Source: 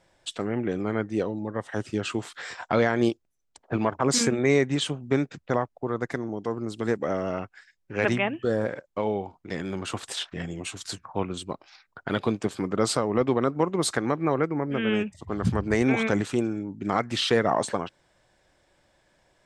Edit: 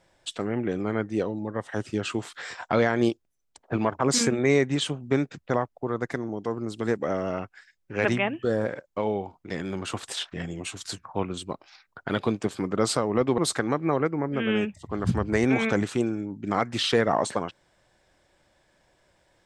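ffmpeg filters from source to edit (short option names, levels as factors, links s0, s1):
-filter_complex "[0:a]asplit=2[s0][s1];[s0]atrim=end=13.382[s2];[s1]atrim=start=13.758[s3];[s2][s3]acrossfade=d=0.004:c1=hsin:c2=hsin"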